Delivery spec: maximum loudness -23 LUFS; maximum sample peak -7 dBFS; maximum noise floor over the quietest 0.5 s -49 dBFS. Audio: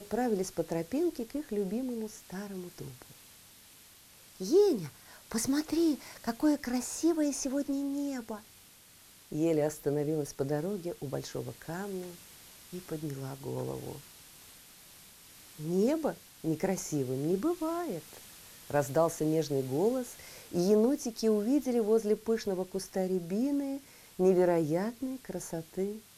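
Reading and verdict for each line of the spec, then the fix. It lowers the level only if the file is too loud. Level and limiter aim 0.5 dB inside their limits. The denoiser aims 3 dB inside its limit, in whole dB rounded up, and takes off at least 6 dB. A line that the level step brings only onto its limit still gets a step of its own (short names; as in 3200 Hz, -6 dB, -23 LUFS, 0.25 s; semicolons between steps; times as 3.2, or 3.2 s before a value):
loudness -32.0 LUFS: OK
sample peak -15.0 dBFS: OK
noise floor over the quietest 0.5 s -57 dBFS: OK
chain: none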